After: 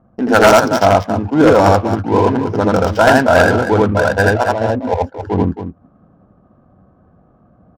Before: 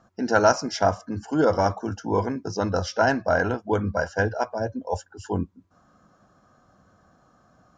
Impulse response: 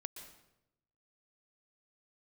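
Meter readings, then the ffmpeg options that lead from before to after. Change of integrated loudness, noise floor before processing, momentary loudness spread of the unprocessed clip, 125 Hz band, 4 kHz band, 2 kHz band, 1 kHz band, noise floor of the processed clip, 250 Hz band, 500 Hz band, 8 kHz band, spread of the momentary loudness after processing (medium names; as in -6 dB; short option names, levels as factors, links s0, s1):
+11.5 dB, -62 dBFS, 11 LU, +11.5 dB, +11.0 dB, +12.0 dB, +11.5 dB, -52 dBFS, +12.5 dB, +11.5 dB, no reading, 9 LU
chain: -af "adynamicsmooth=sensitivity=4.5:basefreq=600,aecho=1:1:81.63|271.1:1|0.355,aeval=exprs='0.316*(abs(mod(val(0)/0.316+3,4)-2)-1)':c=same,volume=2.82"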